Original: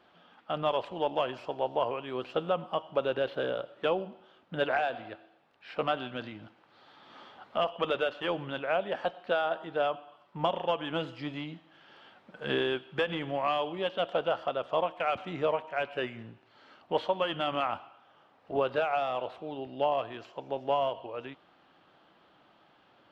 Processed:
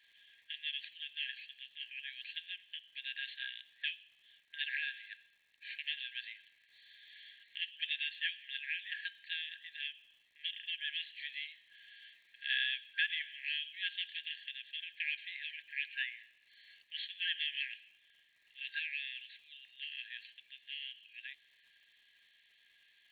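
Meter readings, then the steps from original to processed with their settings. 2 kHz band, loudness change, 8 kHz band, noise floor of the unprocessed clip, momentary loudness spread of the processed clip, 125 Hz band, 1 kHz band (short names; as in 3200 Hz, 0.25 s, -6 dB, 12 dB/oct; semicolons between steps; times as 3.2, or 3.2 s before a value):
-0.5 dB, -7.5 dB, n/a, -63 dBFS, 18 LU, under -40 dB, under -40 dB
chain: FFT band-pass 1600–4500 Hz; notch 2900 Hz, Q 28; crackle 270/s -68 dBFS; gain +2.5 dB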